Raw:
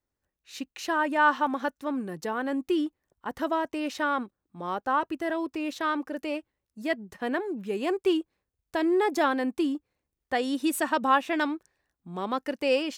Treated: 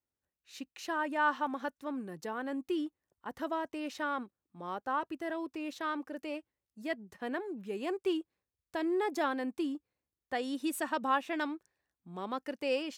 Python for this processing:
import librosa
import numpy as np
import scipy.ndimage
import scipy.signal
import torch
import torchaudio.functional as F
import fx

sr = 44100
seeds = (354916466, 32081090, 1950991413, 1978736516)

y = scipy.signal.sosfilt(scipy.signal.butter(2, 60.0, 'highpass', fs=sr, output='sos'), x)
y = F.gain(torch.from_numpy(y), -7.5).numpy()